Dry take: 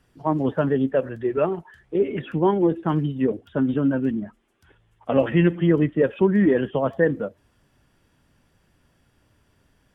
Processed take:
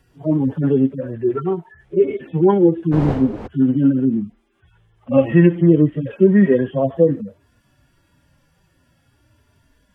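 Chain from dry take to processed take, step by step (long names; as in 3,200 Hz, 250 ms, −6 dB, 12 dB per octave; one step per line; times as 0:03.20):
harmonic-percussive split with one part muted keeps harmonic
0:02.91–0:03.46: wind on the microphone 480 Hz −34 dBFS
level +6.5 dB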